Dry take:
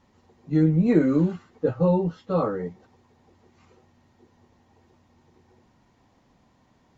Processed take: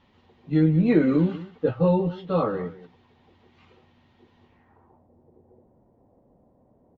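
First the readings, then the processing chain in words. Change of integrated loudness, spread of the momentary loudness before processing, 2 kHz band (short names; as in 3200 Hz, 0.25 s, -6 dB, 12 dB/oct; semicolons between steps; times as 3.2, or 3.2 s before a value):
0.0 dB, 9 LU, +3.0 dB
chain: echo 0.186 s -16.5 dB; low-pass sweep 3300 Hz -> 560 Hz, 4.45–5.09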